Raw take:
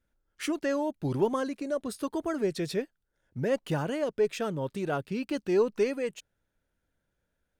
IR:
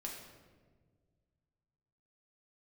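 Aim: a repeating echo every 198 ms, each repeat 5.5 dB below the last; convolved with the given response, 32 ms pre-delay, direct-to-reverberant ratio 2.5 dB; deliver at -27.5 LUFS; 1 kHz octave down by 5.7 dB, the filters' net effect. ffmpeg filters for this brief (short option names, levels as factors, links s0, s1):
-filter_complex "[0:a]equalizer=f=1000:t=o:g=-7.5,aecho=1:1:198|396|594|792|990|1188|1386:0.531|0.281|0.149|0.079|0.0419|0.0222|0.0118,asplit=2[s0][s1];[1:a]atrim=start_sample=2205,adelay=32[s2];[s1][s2]afir=irnorm=-1:irlink=0,volume=0.891[s3];[s0][s3]amix=inputs=2:normalize=0,volume=1.12"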